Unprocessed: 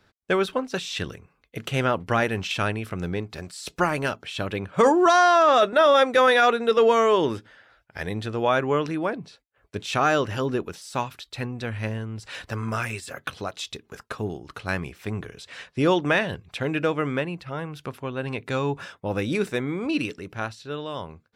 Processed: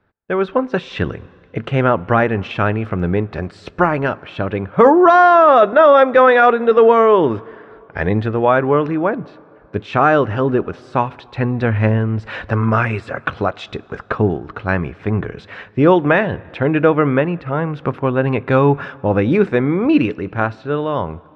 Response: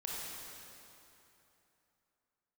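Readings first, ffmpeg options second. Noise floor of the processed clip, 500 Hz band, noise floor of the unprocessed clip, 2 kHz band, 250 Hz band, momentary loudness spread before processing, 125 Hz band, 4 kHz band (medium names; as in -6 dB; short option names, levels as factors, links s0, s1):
-46 dBFS, +9.0 dB, -66 dBFS, +6.0 dB, +10.0 dB, 18 LU, +11.5 dB, -3.0 dB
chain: -filter_complex "[0:a]lowpass=1700,dynaudnorm=f=290:g=3:m=6.68,asplit=2[s0][s1];[1:a]atrim=start_sample=2205[s2];[s1][s2]afir=irnorm=-1:irlink=0,volume=0.0708[s3];[s0][s3]amix=inputs=2:normalize=0,volume=0.891"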